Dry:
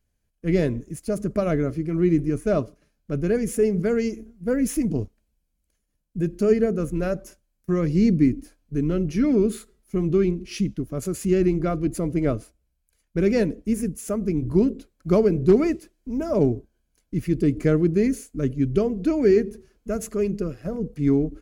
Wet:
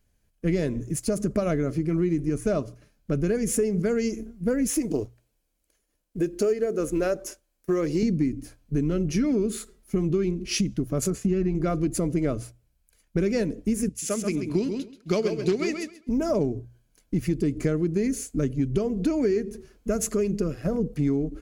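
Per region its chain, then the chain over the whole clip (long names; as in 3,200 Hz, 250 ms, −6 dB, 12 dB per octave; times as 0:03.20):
0:04.70–0:08.03: low shelf with overshoot 260 Hz −8 dB, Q 1.5 + floating-point word with a short mantissa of 6 bits
0:11.10–0:11.55: low-pass filter 1,700 Hz 6 dB per octave + comb filter 4.5 ms, depth 47% + downward expander −40 dBFS
0:13.89–0:16.09: meter weighting curve D + repeating echo 133 ms, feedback 22%, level −6.5 dB + expander for the loud parts, over −40 dBFS
whole clip: mains-hum notches 60/120 Hz; dynamic equaliser 6,900 Hz, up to +6 dB, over −53 dBFS, Q 0.94; downward compressor 6 to 1, threshold −27 dBFS; level +5.5 dB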